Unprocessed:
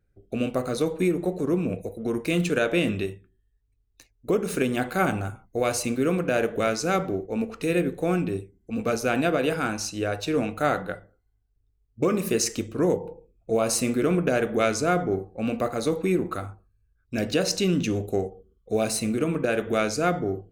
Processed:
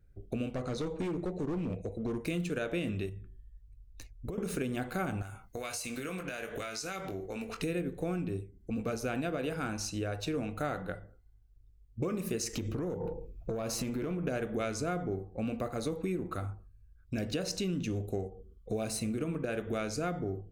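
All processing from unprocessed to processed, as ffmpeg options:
ffmpeg -i in.wav -filter_complex "[0:a]asettb=1/sr,asplit=3[link_01][link_02][link_03];[link_01]atrim=end=0.544[link_04];[link_02]atrim=start=0.54:end=2.21,asetpts=PTS-STARTPTS,afade=type=in:duration=0.004:curve=qsin,afade=type=out:start_time=1.666:duration=0.004:curve=qsin,lowpass=frequency=7600:width=0.5412,lowpass=frequency=7600:width=1.3066,asoftclip=type=hard:threshold=-23.5dB[link_05];[link_03]atrim=start=2.206[link_06];[link_04][link_05]acrossfade=duration=0.004:curve1=hsin:curve2=qsin[link_07];[link_07][link_06]acrossfade=duration=0.004:curve1=qsin:curve2=hsin,asettb=1/sr,asplit=3[link_08][link_09][link_10];[link_08]atrim=end=3.094[link_11];[link_09]atrim=start=3.09:end=4.38,asetpts=PTS-STARTPTS,afade=type=in:duration=0.004:curve=qsin,afade=type=out:start_time=1.286:duration=0.004:curve=qsin,lowshelf=frequency=130:gain=8.5,acompressor=threshold=-37dB:ratio=5:attack=3.2:release=140:knee=1:detection=peak[link_12];[link_10]atrim=start=4.376[link_13];[link_11][link_12]acrossfade=duration=0.004:curve1=hsin:curve2=qsin[link_14];[link_14][link_13]acrossfade=duration=0.004:curve1=qsin:curve2=hsin,asettb=1/sr,asplit=3[link_15][link_16][link_17];[link_15]atrim=end=5.224[link_18];[link_16]atrim=start=5.22:end=7.62,asetpts=PTS-STARTPTS,afade=type=in:duration=0.004:curve=qsin,afade=type=out:start_time=2.396:duration=0.004:curve=qsin,tiltshelf=frequency=810:gain=-8,acompressor=threshold=-36dB:ratio=4:attack=3.2:release=140:knee=1:detection=peak,asplit=2[link_19][link_20];[link_20]adelay=21,volume=-7.5dB[link_21];[link_19][link_21]amix=inputs=2:normalize=0,atrim=end_sample=105840[link_22];[link_17]atrim=start=7.616[link_23];[link_18][link_22]acrossfade=duration=0.004:curve1=hsin:curve2=qsin[link_24];[link_24][link_23]acrossfade=duration=0.004:curve1=qsin:curve2=hsin,asettb=1/sr,asplit=3[link_25][link_26][link_27];[link_25]atrim=end=12.534[link_28];[link_26]atrim=start=12.53:end=14.24,asetpts=PTS-STARTPTS,afade=type=in:duration=0.004:curve=qsin,afade=type=out:start_time=1.706:duration=0.004:curve=qsin,equalizer=frequency=8700:width_type=o:width=0.3:gain=-11.5,acompressor=threshold=-32dB:ratio=6:attack=3.2:release=140:knee=1:detection=peak,aeval=exprs='0.0794*sin(PI/2*1.58*val(0)/0.0794)':channel_layout=same[link_29];[link_27]atrim=start=14.236[link_30];[link_28][link_29]acrossfade=duration=0.004:curve1=hsin:curve2=qsin[link_31];[link_31][link_30]acrossfade=duration=0.004:curve1=qsin:curve2=hsin,lowshelf=frequency=130:gain=10.5,acompressor=threshold=-35dB:ratio=3" out.wav

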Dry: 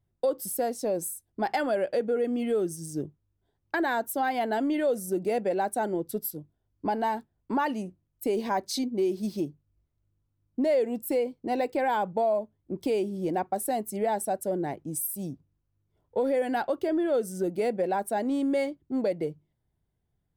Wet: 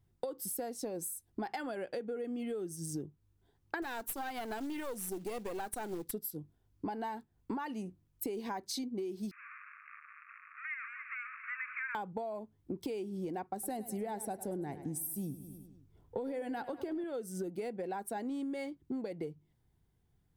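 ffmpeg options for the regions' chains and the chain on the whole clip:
ffmpeg -i in.wav -filter_complex "[0:a]asettb=1/sr,asplit=3[link_01][link_02][link_03];[link_01]atrim=end=3.824[link_04];[link_02]atrim=start=3.82:end=6.12,asetpts=PTS-STARTPTS,afade=type=in:duration=0.004:curve=qsin,afade=type=out:start_time=2.296:duration=0.004:curve=qsin,highshelf=frequency=4400:gain=8.5,acrusher=bits=5:mode=log:mix=0:aa=0.000001,aeval=exprs='(tanh(12.6*val(0)+0.55)-tanh(0.55))/12.6':channel_layout=same[link_05];[link_03]atrim=start=6.116[link_06];[link_04][link_05]acrossfade=duration=0.004:curve1=hsin:curve2=qsin[link_07];[link_07][link_06]acrossfade=duration=0.004:curve1=qsin:curve2=hsin,asettb=1/sr,asplit=3[link_08][link_09][link_10];[link_08]atrim=end=9.314[link_11];[link_09]atrim=start=9.31:end=11.95,asetpts=PTS-STARTPTS,afade=type=in:duration=0.004:curve=qsin,afade=type=out:start_time=2.636:duration=0.004:curve=qsin,aeval=exprs='val(0)+0.5*0.0224*sgn(val(0))':channel_layout=same,asuperpass=centerf=1700:order=20:qfactor=1.2,aecho=1:1:278:0.266,atrim=end_sample=116424[link_12];[link_10]atrim=start=11.946[link_13];[link_11][link_12]acrossfade=duration=0.004:curve1=hsin:curve2=qsin[link_14];[link_14][link_13]acrossfade=duration=0.004:curve1=qsin:curve2=hsin,asettb=1/sr,asplit=3[link_15][link_16][link_17];[link_15]atrim=end=13.534[link_18];[link_16]atrim=start=13.53:end=17.04,asetpts=PTS-STARTPTS,afade=type=in:duration=0.004:curve=qsin,afade=type=out:start_time=3.506:duration=0.004:curve=qsin,lowshelf=frequency=320:gain=6,aecho=1:1:102|204|306|408|510:0.15|0.0853|0.0486|0.0277|0.0158,atrim=end_sample=154791[link_19];[link_17]atrim=start=17.036[link_20];[link_18][link_19]acrossfade=duration=0.004:curve1=hsin:curve2=qsin[link_21];[link_21][link_20]acrossfade=duration=0.004:curve1=qsin:curve2=hsin,equalizer=frequency=600:width=6.2:gain=-10,acompressor=threshold=-40dB:ratio=10,volume=4dB" out.wav

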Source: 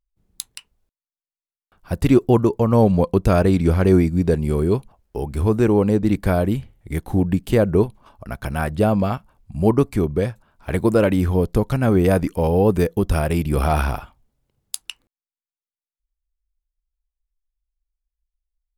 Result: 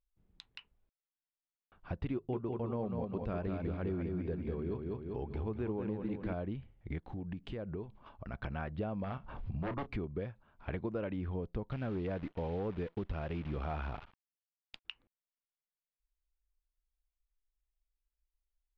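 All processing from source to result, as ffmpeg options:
ffmpeg -i in.wav -filter_complex "[0:a]asettb=1/sr,asplit=3[link_01][link_02][link_03];[link_01]atrim=end=2.134[link_04];[link_02]atrim=start=2.13:end=6.33,asetpts=PTS-STARTPTS,afade=type=in:duration=0.004:curve=qsin,afade=type=out:start_time=4.196:duration=0.004:curve=qsin,bandreject=frequency=50:width_type=h:width=6,bandreject=frequency=100:width_type=h:width=6,bandreject=frequency=150:width_type=h:width=6,aecho=1:1:197|394|591|788|985:0.562|0.225|0.09|0.036|0.0144,atrim=end_sample=185220[link_05];[link_03]atrim=start=6.326[link_06];[link_04][link_05]acrossfade=duration=0.004:curve1=hsin:curve2=qsin[link_07];[link_07][link_06]acrossfade=duration=0.004:curve1=qsin:curve2=hsin,asettb=1/sr,asplit=3[link_08][link_09][link_10];[link_08]atrim=end=6.984[link_11];[link_09]atrim=start=6.98:end=8.34,asetpts=PTS-STARTPTS,afade=type=in:duration=0.004:curve=qsin,afade=type=out:start_time=1.356:duration=0.004:curve=qsin,acompressor=threshold=-34dB:ratio=2.5:attack=3.2:release=140:knee=1:detection=peak,equalizer=frequency=13000:width=0.56:gain=12[link_12];[link_10]atrim=start=8.336[link_13];[link_11][link_12]acrossfade=duration=0.004:curve1=hsin:curve2=qsin[link_14];[link_14][link_13]acrossfade=duration=0.004:curve1=qsin:curve2=hsin,asettb=1/sr,asplit=3[link_15][link_16][link_17];[link_15]atrim=end=9.044[link_18];[link_16]atrim=start=9.04:end=9.97,asetpts=PTS-STARTPTS,afade=type=in:duration=0.004:curve=qsin,afade=type=out:start_time=0.926:duration=0.004:curve=qsin,acompressor=mode=upward:threshold=-16dB:ratio=2.5:attack=3.2:release=140:knee=2.83:detection=peak,aeval=exprs='0.188*(abs(mod(val(0)/0.188+3,4)-2)-1)':channel_layout=same,asplit=2[link_19][link_20];[link_20]adelay=31,volume=-12.5dB[link_21];[link_19][link_21]amix=inputs=2:normalize=0,atrim=end_sample=41013[link_22];[link_17]atrim=start=9.966[link_23];[link_18][link_22]acrossfade=duration=0.004:curve1=hsin:curve2=qsin[link_24];[link_24][link_23]acrossfade=duration=0.004:curve1=qsin:curve2=hsin,asettb=1/sr,asplit=3[link_25][link_26][link_27];[link_25]atrim=end=11.724[link_28];[link_26]atrim=start=11.72:end=14.85,asetpts=PTS-STARTPTS,afade=type=in:duration=0.004:curve=qsin,afade=type=out:start_time=3.126:duration=0.004:curve=qsin,volume=9.5dB,asoftclip=hard,volume=-9.5dB,acrusher=bits=6:dc=4:mix=0:aa=0.000001[link_29];[link_27]atrim=start=14.846[link_30];[link_28][link_29]acrossfade=duration=0.004:curve1=hsin:curve2=qsin[link_31];[link_31][link_30]acrossfade=duration=0.004:curve1=qsin:curve2=hsin,acompressor=threshold=-31dB:ratio=4,lowpass=frequency=3400:width=0.5412,lowpass=frequency=3400:width=1.3066,volume=-6dB" out.wav

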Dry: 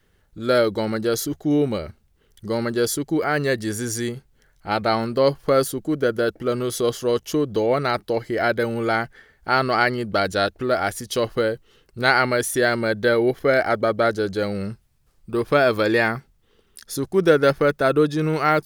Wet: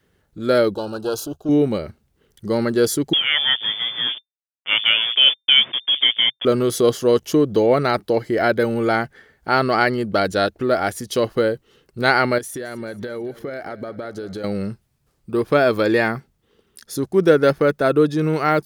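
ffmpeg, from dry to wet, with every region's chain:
ffmpeg -i in.wav -filter_complex "[0:a]asettb=1/sr,asplit=3[link_01][link_02][link_03];[link_01]atrim=end=0.744[link_04];[link_02]atrim=start=0.74:end=1.49,asetpts=PTS-STARTPTS,afade=type=in:duration=0.004:curve=qsin,afade=type=out:start_time=0.746:duration=0.004:curve=qsin,aeval=exprs='if(lt(val(0),0),0.447*val(0),val(0))':channel_layout=same,asuperstop=centerf=2000:order=12:qfactor=2.3,equalizer=frequency=210:width_type=o:width=1:gain=-7[link_05];[link_03]atrim=start=1.486[link_06];[link_04][link_05]acrossfade=duration=0.004:curve1=hsin:curve2=qsin[link_07];[link_07][link_06]acrossfade=duration=0.004:curve1=qsin:curve2=hsin,asettb=1/sr,asplit=3[link_08][link_09][link_10];[link_08]atrim=end=3.134[link_11];[link_09]atrim=start=3.13:end=6.45,asetpts=PTS-STARTPTS,afade=type=in:duration=0.004:curve=qsin,afade=type=out:start_time=3.316:duration=0.004:curve=qsin,acrusher=bits=4:mix=0:aa=0.5,lowpass=frequency=3100:width_type=q:width=0.5098,lowpass=frequency=3100:width_type=q:width=0.6013,lowpass=frequency=3100:width_type=q:width=0.9,lowpass=frequency=3100:width_type=q:width=2.563,afreqshift=-3600,equalizer=frequency=130:width_type=o:width=0.41:gain=5.5[link_12];[link_10]atrim=start=6.446[link_13];[link_11][link_12]acrossfade=duration=0.004:curve1=hsin:curve2=qsin[link_14];[link_14][link_13]acrossfade=duration=0.004:curve1=qsin:curve2=hsin,asettb=1/sr,asplit=3[link_15][link_16][link_17];[link_15]atrim=end=12.384[link_18];[link_16]atrim=start=12.38:end=14.44,asetpts=PTS-STARTPTS,afade=type=in:duration=0.004:curve=qsin,afade=type=out:start_time=2.056:duration=0.004:curve=qsin,acompressor=threshold=-29dB:ratio=8:attack=3.2:release=140:knee=1:detection=peak,aecho=1:1:221|442|663|884:0.119|0.0606|0.0309|0.0158,atrim=end_sample=90846[link_19];[link_17]atrim=start=14.436[link_20];[link_18][link_19]acrossfade=duration=0.004:curve1=hsin:curve2=qsin[link_21];[link_21][link_20]acrossfade=duration=0.004:curve1=qsin:curve2=hsin,highpass=frequency=200:poles=1,lowshelf=frequency=450:gain=8,dynaudnorm=framelen=560:gausssize=11:maxgain=11.5dB,volume=-1dB" out.wav

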